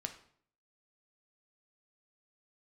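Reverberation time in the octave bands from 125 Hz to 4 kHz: 0.70 s, 0.70 s, 0.60 s, 0.55 s, 0.50 s, 0.45 s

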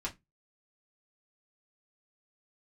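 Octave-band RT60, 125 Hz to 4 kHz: 0.30 s, 0.25 s, 0.15 s, 0.15 s, 0.15 s, 0.15 s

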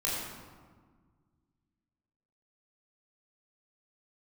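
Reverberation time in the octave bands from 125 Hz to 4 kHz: 2.5 s, 2.3 s, 1.6 s, 1.6 s, 1.2 s, 0.90 s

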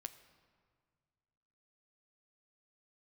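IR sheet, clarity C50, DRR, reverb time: 13.5 dB, 9.5 dB, 1.9 s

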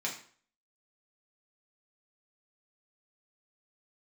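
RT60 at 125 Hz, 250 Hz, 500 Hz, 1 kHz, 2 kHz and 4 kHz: 0.45 s, 0.45 s, 0.50 s, 0.50 s, 0.45 s, 0.40 s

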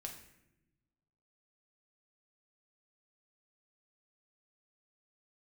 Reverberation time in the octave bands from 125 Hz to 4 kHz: 1.7 s, 1.6 s, 1.1 s, 0.75 s, 0.85 s, 0.60 s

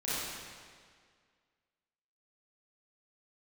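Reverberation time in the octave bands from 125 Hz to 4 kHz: 1.8 s, 1.9 s, 1.9 s, 1.9 s, 1.8 s, 1.7 s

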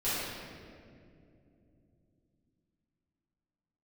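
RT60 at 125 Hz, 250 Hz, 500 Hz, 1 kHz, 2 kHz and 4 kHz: 4.6 s, 4.4 s, 3.3 s, 2.0 s, 1.8 s, 1.4 s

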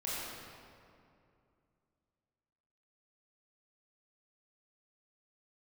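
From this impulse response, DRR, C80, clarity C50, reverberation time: -8.5 dB, -2.5 dB, -4.5 dB, 2.5 s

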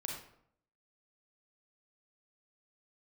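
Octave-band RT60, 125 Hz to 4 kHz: 0.80 s, 0.75 s, 0.70 s, 0.65 s, 0.55 s, 0.45 s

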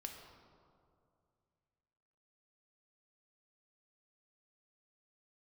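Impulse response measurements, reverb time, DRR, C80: 2.4 s, 2.0 dB, 6.0 dB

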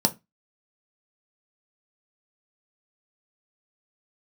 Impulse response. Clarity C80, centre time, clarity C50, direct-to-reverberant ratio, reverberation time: 30.0 dB, 5 ms, 21.0 dB, 5.5 dB, 0.20 s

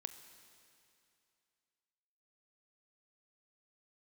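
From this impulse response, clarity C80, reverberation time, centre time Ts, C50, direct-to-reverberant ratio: 11.5 dB, 2.6 s, 20 ms, 11.0 dB, 9.5 dB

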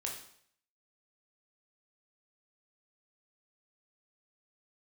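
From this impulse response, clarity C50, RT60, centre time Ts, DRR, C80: 5.5 dB, 0.65 s, 30 ms, -1.0 dB, 9.0 dB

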